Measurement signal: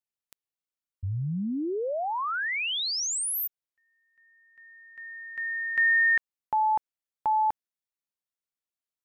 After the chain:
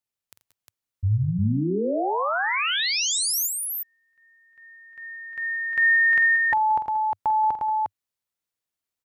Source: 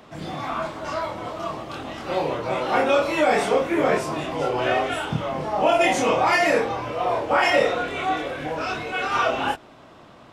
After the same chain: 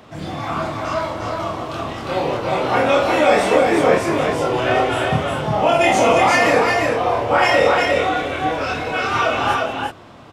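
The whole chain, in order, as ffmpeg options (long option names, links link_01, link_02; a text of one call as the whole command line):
ffmpeg -i in.wav -filter_complex "[0:a]equalizer=frequency=100:width_type=o:width=0.57:gain=7,asplit=2[link_01][link_02];[link_02]aecho=0:1:47|84|179|190|355:0.316|0.15|0.2|0.126|0.708[link_03];[link_01][link_03]amix=inputs=2:normalize=0,volume=3dB" out.wav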